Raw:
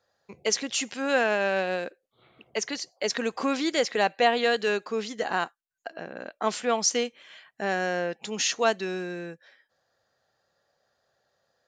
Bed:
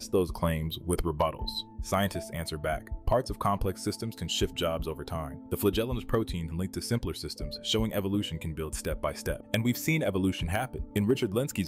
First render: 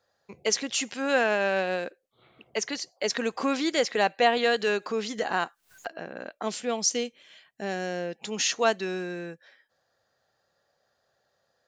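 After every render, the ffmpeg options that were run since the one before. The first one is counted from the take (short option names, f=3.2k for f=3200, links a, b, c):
-filter_complex "[0:a]asettb=1/sr,asplit=3[a][b][c];[a]atrim=end=4.374[d];[b]atrim=start=4.37:end=5.9,asetpts=PTS-STARTPTS,afade=t=in:d=0.004:c=qsin,afade=t=out:st=1.526:d=0.004:c=qsin,acompressor=mode=upward:threshold=-27dB:ratio=2.5:attack=3.2:release=140:knee=2.83:detection=peak[e];[c]atrim=start=5.896[f];[d][e]acrossfade=d=0.004:c1=hsin:c2=qsin[g];[g][f]acrossfade=d=0.004:c1=qsin:c2=hsin,asettb=1/sr,asplit=3[h][i][j];[h]atrim=end=6.424[k];[i]atrim=start=6.42:end=8.18,asetpts=PTS-STARTPTS,afade=t=in:d=0.004:c=qsin,afade=t=out:st=1.756:d=0.004:c=qsin,equalizer=f=1.2k:w=0.69:g=-8.5[l];[j]atrim=start=8.176[m];[k][l]acrossfade=d=0.004:c1=hsin:c2=qsin[n];[n][m]acrossfade=d=0.004:c1=qsin:c2=hsin"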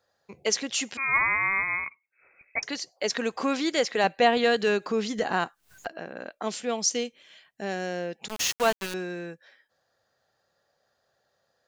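-filter_complex "[0:a]asettb=1/sr,asplit=3[a][b][c];[a]atrim=end=0.974[d];[b]atrim=start=0.97:end=2.63,asetpts=PTS-STARTPTS,afade=t=in:d=0.004:c=qsin,afade=t=out:st=1.656:d=0.004:c=qsin,lowpass=f=2.3k:t=q:w=0.5098,lowpass=f=2.3k:t=q:w=0.6013,lowpass=f=2.3k:t=q:w=0.9,lowpass=f=2.3k:t=q:w=2.563,afreqshift=-2700[e];[c]atrim=start=2.626[f];[d][e]acrossfade=d=0.004:c1=hsin:c2=qsin[g];[g][f]acrossfade=d=0.004:c1=qsin:c2=hsin,asettb=1/sr,asplit=3[h][i][j];[h]atrim=end=4.044[k];[i]atrim=start=4.04:end=5.97,asetpts=PTS-STARTPTS,afade=t=in:d=0.004:c=qsin,afade=t=out:st=1.926:d=0.004:c=qsin,lowshelf=f=210:g=10.5[l];[j]atrim=start=5.966[m];[k][l]acrossfade=d=0.004:c1=hsin:c2=qsin[n];[n][m]acrossfade=d=0.004:c1=qsin:c2=hsin,asettb=1/sr,asplit=3[o][p][q];[o]atrim=end=8.284[r];[p]atrim=start=8.28:end=8.94,asetpts=PTS-STARTPTS,afade=t=in:d=0.004:c=qsin,afade=t=out:st=0.656:d=0.004:c=qsin,aeval=exprs='val(0)*gte(abs(val(0)),0.0447)':c=same[s];[q]atrim=start=8.936[t];[r][s]acrossfade=d=0.004:c1=hsin:c2=qsin[u];[u][t]acrossfade=d=0.004:c1=qsin:c2=hsin"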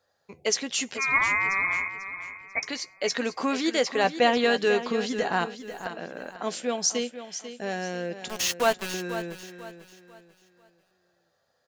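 -filter_complex "[0:a]asplit=2[a][b];[b]adelay=12,volume=-11dB[c];[a][c]amix=inputs=2:normalize=0,asplit=2[d][e];[e]aecho=0:1:493|986|1479|1972:0.266|0.0905|0.0308|0.0105[f];[d][f]amix=inputs=2:normalize=0"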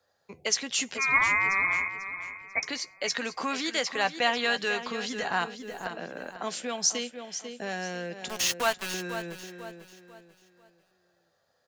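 -filter_complex "[0:a]acrossover=split=180|750|5600[a][b][c][d];[a]alimiter=level_in=18dB:limit=-24dB:level=0:latency=1,volume=-18dB[e];[b]acompressor=threshold=-37dB:ratio=6[f];[e][f][c][d]amix=inputs=4:normalize=0"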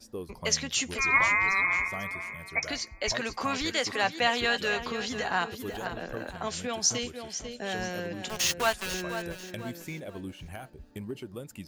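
-filter_complex "[1:a]volume=-12dB[a];[0:a][a]amix=inputs=2:normalize=0"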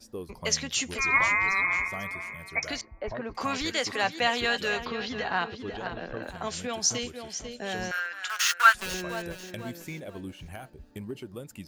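-filter_complex "[0:a]asettb=1/sr,asplit=3[a][b][c];[a]atrim=end=2.814[d];[b]atrim=start=2.81:end=3.35,asetpts=PTS-STARTPTS,afade=t=in:d=0.004:c=qsin,afade=t=out:st=0.536:d=0.004:c=qsin,lowpass=1.1k[e];[c]atrim=start=3.346[f];[d][e]acrossfade=d=0.004:c1=hsin:c2=qsin[g];[g][f]acrossfade=d=0.004:c1=qsin:c2=hsin,asettb=1/sr,asplit=3[h][i][j];[h]atrim=end=4.854[k];[i]atrim=start=4.85:end=6.23,asetpts=PTS-STARTPTS,afade=t=in:d=0.004:c=qsin,afade=t=out:st=1.376:d=0.004:c=qsin,lowpass=f=4.9k:w=0.5412,lowpass=f=4.9k:w=1.3066[l];[j]atrim=start=6.226[m];[k][l]acrossfade=d=0.004:c1=hsin:c2=qsin[n];[n][m]acrossfade=d=0.004:c1=qsin:c2=hsin,asettb=1/sr,asplit=3[o][p][q];[o]atrim=end=7.914[r];[p]atrim=start=7.91:end=8.75,asetpts=PTS-STARTPTS,afade=t=in:d=0.004:c=qsin,afade=t=out:st=0.836:d=0.004:c=qsin,highpass=f=1.4k:t=q:w=7.2[s];[q]atrim=start=8.746[t];[r][s]acrossfade=d=0.004:c1=hsin:c2=qsin[u];[u][t]acrossfade=d=0.004:c1=qsin:c2=hsin"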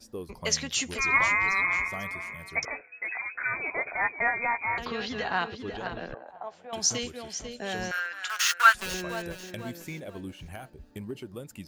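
-filter_complex "[0:a]asettb=1/sr,asplit=3[a][b][c];[a]atrim=end=2.654[d];[b]atrim=start=2.65:end=4.78,asetpts=PTS-STARTPTS,afade=t=in:d=0.004:c=qsin,afade=t=out:st=2.126:d=0.004:c=qsin,lowpass=f=2.2k:t=q:w=0.5098,lowpass=f=2.2k:t=q:w=0.6013,lowpass=f=2.2k:t=q:w=0.9,lowpass=f=2.2k:t=q:w=2.563,afreqshift=-2600[e];[c]atrim=start=4.776[f];[d][e]acrossfade=d=0.004:c1=hsin:c2=qsin[g];[g][f]acrossfade=d=0.004:c1=qsin:c2=hsin,asettb=1/sr,asplit=3[h][i][j];[h]atrim=end=6.144[k];[i]atrim=start=6.14:end=6.73,asetpts=PTS-STARTPTS,afade=t=in:d=0.004:c=qsin,afade=t=out:st=0.586:d=0.004:c=qsin,bandpass=f=780:t=q:w=3[l];[j]atrim=start=6.726[m];[k][l]acrossfade=d=0.004:c1=hsin:c2=qsin[n];[n][m]acrossfade=d=0.004:c1=qsin:c2=hsin"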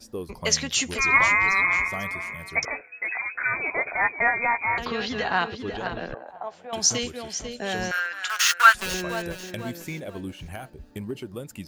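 -af "volume=4.5dB,alimiter=limit=-3dB:level=0:latency=1"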